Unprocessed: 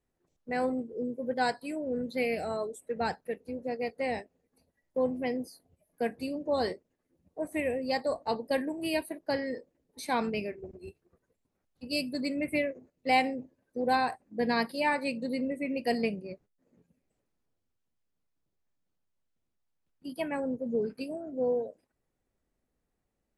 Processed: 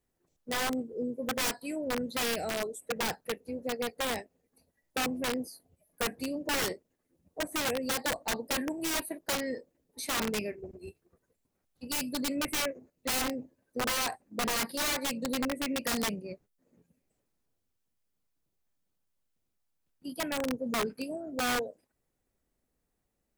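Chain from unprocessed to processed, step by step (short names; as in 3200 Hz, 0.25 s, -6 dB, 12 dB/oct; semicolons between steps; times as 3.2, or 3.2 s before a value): high shelf 6800 Hz +7.5 dB; wrapped overs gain 25 dB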